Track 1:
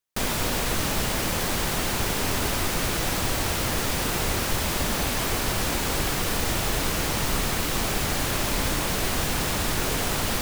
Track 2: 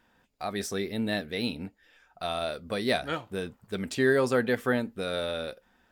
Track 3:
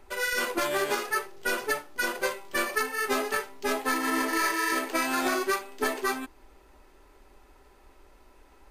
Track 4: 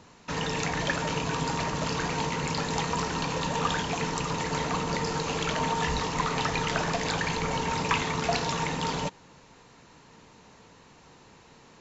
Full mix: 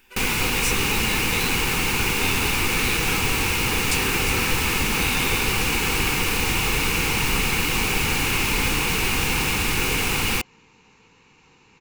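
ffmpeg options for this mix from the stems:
-filter_complex "[0:a]volume=1.26[s0];[1:a]acompressor=threshold=0.0178:ratio=6,crystalizer=i=6:c=0,volume=0.944[s1];[2:a]volume=0.299[s2];[3:a]aeval=exprs='(tanh(56.2*val(0)+0.7)-tanh(0.7))/56.2':c=same,adelay=400,volume=1.12[s3];[s0][s1][s2][s3]amix=inputs=4:normalize=0,superequalizer=8b=0.251:12b=2.82"

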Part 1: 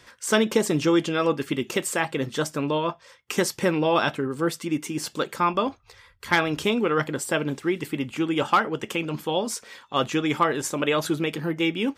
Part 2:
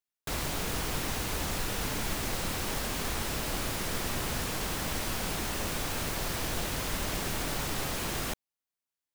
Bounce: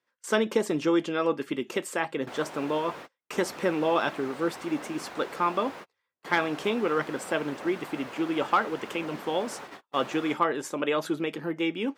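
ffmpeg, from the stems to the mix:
-filter_complex "[0:a]volume=0.75,asplit=2[s0][s1];[1:a]acontrast=23,aphaser=in_gain=1:out_gain=1:delay=3:decay=0.21:speed=0.71:type=triangular,asplit=2[s2][s3];[s3]highpass=f=720:p=1,volume=3.55,asoftclip=type=tanh:threshold=0.2[s4];[s2][s4]amix=inputs=2:normalize=0,lowpass=f=1300:p=1,volume=0.501,adelay=2000,volume=0.335[s5];[s1]apad=whole_len=491315[s6];[s5][s6]sidechaingate=range=0.0224:threshold=0.00501:ratio=16:detection=peak[s7];[s0][s7]amix=inputs=2:normalize=0,agate=range=0.0631:threshold=0.0126:ratio=16:detection=peak,highpass=230,highshelf=f=3200:g=-8.5"

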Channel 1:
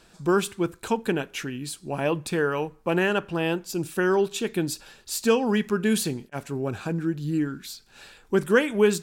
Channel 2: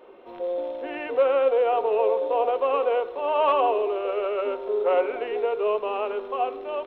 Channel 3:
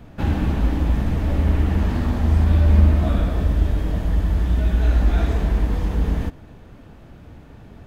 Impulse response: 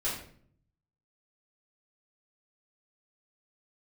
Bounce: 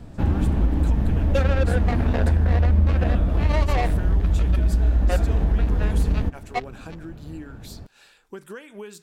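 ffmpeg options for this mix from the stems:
-filter_complex "[0:a]lowshelf=f=330:g=-9,acompressor=threshold=0.0355:ratio=16,volume=0.531,asplit=2[s0][s1];[1:a]aecho=1:1:1.5:0.61,acrusher=bits=2:mix=0:aa=0.5,adelay=150,volume=0.631[s2];[2:a]tiltshelf=f=1400:g=4,volume=0.668[s3];[s1]apad=whole_len=309312[s4];[s2][s4]sidechaingate=range=0.0224:threshold=0.00447:ratio=16:detection=peak[s5];[s0][s5][s3]amix=inputs=3:normalize=0,lowshelf=f=150:g=3,acompressor=threshold=0.158:ratio=3"

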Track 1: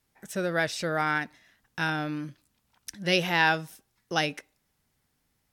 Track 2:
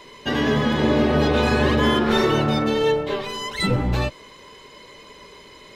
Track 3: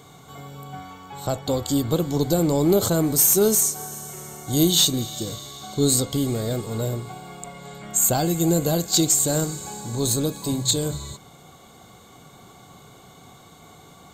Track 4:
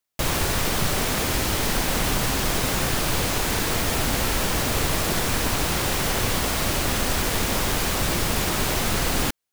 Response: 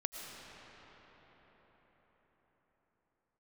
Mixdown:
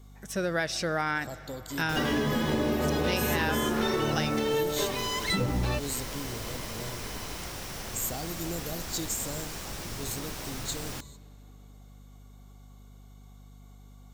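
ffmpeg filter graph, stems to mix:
-filter_complex "[0:a]volume=0.944,asplit=2[s0][s1];[s1]volume=0.133[s2];[1:a]adelay=1700,volume=0.75[s3];[2:a]equalizer=f=14000:w=1.1:g=7.5,aeval=exprs='val(0)+0.0224*(sin(2*PI*50*n/s)+sin(2*PI*2*50*n/s)/2+sin(2*PI*3*50*n/s)/3+sin(2*PI*4*50*n/s)/4+sin(2*PI*5*50*n/s)/5)':c=same,volume=0.141,asplit=2[s4][s5];[s5]volume=0.141[s6];[3:a]adelay=1700,volume=0.158,asplit=2[s7][s8];[s8]volume=0.0708[s9];[4:a]atrim=start_sample=2205[s10];[s2][s6][s9]amix=inputs=3:normalize=0[s11];[s11][s10]afir=irnorm=-1:irlink=0[s12];[s0][s3][s4][s7][s12]amix=inputs=5:normalize=0,equalizer=f=5600:t=o:w=0.31:g=5.5,acompressor=threshold=0.0631:ratio=6"

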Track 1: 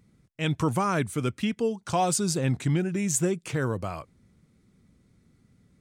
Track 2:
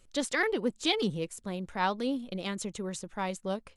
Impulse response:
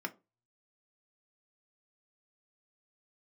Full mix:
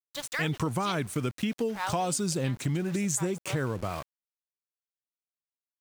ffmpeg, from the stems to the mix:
-filter_complex "[0:a]volume=1.41[s0];[1:a]highpass=750,volume=0.944,asplit=3[s1][s2][s3];[s1]atrim=end=0.97,asetpts=PTS-STARTPTS,afade=t=out:st=0.966:d=0.004:c=hsin[s4];[s2]atrim=start=0.97:end=1.58,asetpts=PTS-STARTPTS,volume=0[s5];[s3]atrim=start=1.58,asetpts=PTS-STARTPTS,afade=t=in:d=0.004:c=hsin[s6];[s4][s5][s6]concat=n=3:v=0:a=1[s7];[s0][s7]amix=inputs=2:normalize=0,aeval=exprs='val(0)*gte(abs(val(0)),0.0141)':c=same,acompressor=threshold=0.0501:ratio=6"

